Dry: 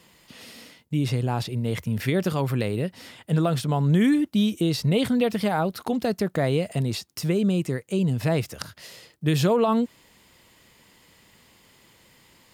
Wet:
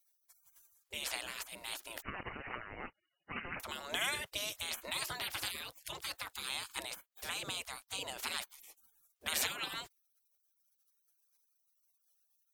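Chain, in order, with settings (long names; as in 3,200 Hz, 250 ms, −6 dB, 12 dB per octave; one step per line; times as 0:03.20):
gate on every frequency bin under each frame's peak −30 dB weak
0:02.02–0:03.60: voice inversion scrambler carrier 2,900 Hz
level +4.5 dB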